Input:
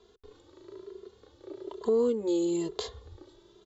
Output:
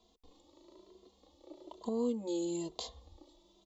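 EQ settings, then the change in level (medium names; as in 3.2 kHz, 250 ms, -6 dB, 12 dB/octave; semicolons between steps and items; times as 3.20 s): static phaser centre 410 Hz, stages 6; -2.0 dB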